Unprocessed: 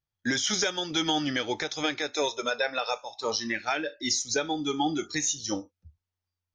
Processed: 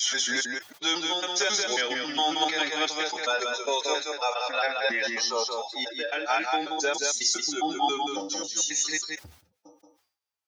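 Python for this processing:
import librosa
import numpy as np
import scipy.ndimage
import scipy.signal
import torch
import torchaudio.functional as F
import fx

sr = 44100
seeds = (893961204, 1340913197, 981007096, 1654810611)

p1 = fx.block_reorder(x, sr, ms=85.0, group=6)
p2 = scipy.signal.sosfilt(scipy.signal.butter(2, 470.0, 'highpass', fs=sr, output='sos'), p1)
p3 = fx.peak_eq(p2, sr, hz=790.0, db=2.5, octaves=0.27)
p4 = fx.stretch_vocoder(p3, sr, factor=1.6)
p5 = p4 + fx.echo_single(p4, sr, ms=179, db=-4.5, dry=0)
p6 = fx.sustainer(p5, sr, db_per_s=110.0)
y = p6 * librosa.db_to_amplitude(2.0)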